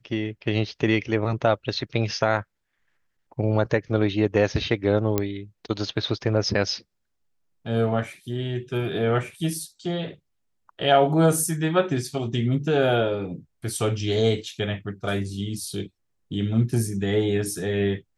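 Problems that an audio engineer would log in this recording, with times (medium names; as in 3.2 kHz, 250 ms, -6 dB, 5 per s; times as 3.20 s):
5.18 s: pop -8 dBFS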